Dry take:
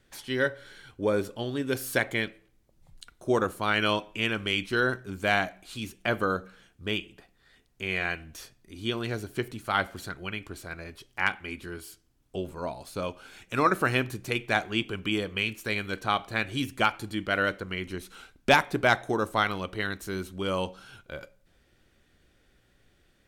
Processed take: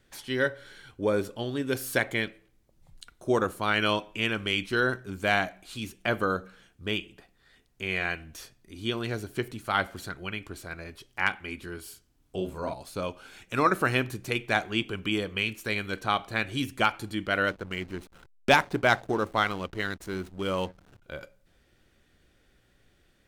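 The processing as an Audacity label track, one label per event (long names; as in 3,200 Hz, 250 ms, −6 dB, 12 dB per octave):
11.820000	12.740000	double-tracking delay 38 ms −4.5 dB
17.480000	21.020000	slack as between gear wheels play −38 dBFS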